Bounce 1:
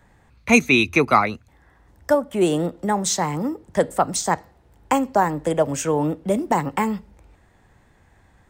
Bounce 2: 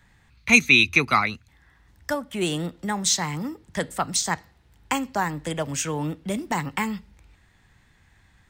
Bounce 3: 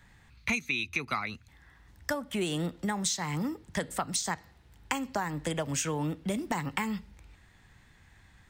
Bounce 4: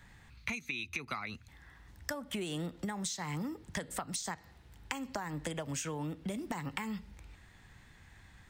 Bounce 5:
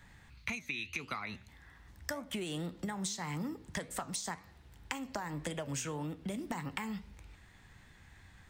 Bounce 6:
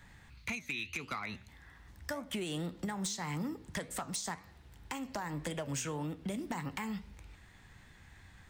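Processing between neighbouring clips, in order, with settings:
FFT filter 160 Hz 0 dB, 560 Hz -9 dB, 2 kHz +4 dB, 4 kHz +7 dB, 8 kHz +2 dB; trim -2.5 dB
compression 20:1, threshold -27 dBFS, peak gain reduction 18.5 dB
compression, threshold -36 dBFS, peak gain reduction 10.5 dB; trim +1 dB
flange 1.8 Hz, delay 9.6 ms, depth 6.7 ms, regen +83%; trim +4 dB
hard clipper -31 dBFS, distortion -17 dB; trim +1 dB

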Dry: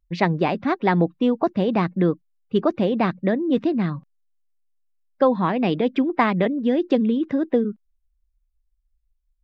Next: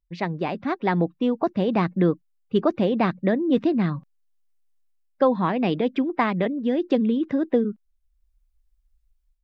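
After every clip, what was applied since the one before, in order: level rider gain up to 12 dB; trim -7.5 dB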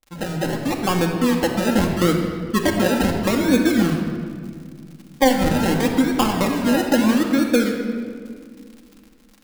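decimation with a swept rate 31×, swing 60% 0.77 Hz; crackle 97 per s -36 dBFS; simulated room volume 3900 m³, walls mixed, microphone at 2.2 m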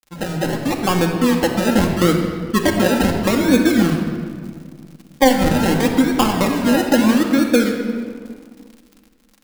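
companding laws mixed up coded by A; trim +3 dB

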